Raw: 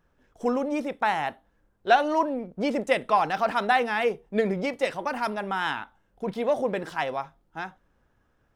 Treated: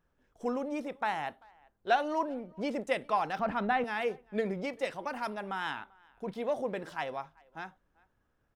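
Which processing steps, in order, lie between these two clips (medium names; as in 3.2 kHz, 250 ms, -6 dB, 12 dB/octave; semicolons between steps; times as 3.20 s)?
3.39–3.84 s: tone controls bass +13 dB, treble -14 dB; speakerphone echo 390 ms, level -26 dB; trim -7.5 dB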